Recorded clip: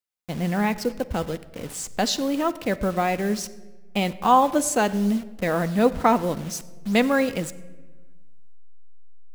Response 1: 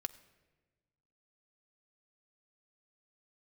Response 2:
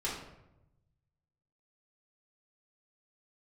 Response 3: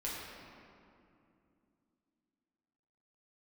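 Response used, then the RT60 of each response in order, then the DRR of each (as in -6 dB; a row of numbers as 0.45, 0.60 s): 1; 1.3, 0.90, 2.6 s; 10.5, -7.0, -6.5 dB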